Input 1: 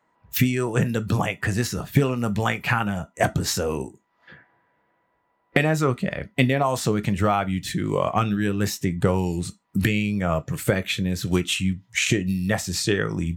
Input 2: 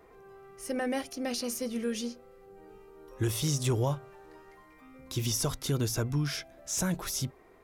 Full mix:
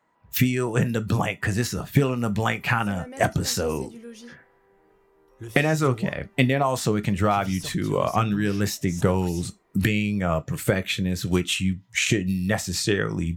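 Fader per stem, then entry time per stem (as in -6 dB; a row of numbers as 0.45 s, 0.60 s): -0.5 dB, -9.0 dB; 0.00 s, 2.20 s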